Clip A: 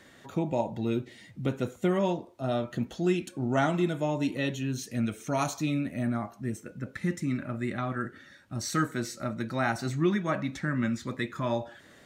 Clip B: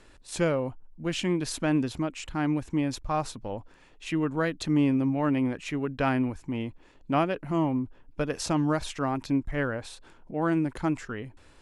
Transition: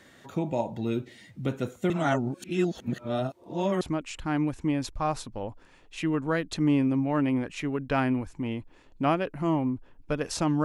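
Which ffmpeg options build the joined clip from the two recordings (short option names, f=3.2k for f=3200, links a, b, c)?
-filter_complex "[0:a]apad=whole_dur=10.64,atrim=end=10.64,asplit=2[a][b];[a]atrim=end=1.902[c];[b]atrim=start=1.898:end=3.812,asetpts=PTS-STARTPTS,areverse[d];[1:a]atrim=start=1.898:end=8.73[e];[c][d]acrossfade=d=0.004:c1=hsin:c2=hsin[f];[f][e]acrossfade=d=0.004:c1=hsin:c2=hsin"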